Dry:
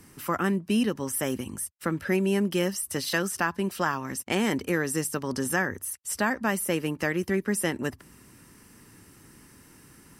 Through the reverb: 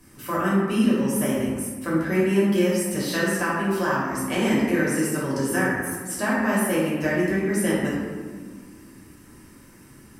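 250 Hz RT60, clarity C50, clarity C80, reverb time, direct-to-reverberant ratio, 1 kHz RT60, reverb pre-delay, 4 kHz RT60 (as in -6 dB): 2.7 s, -0.5 dB, 1.5 dB, 1.6 s, -7.0 dB, 1.5 s, 3 ms, 0.85 s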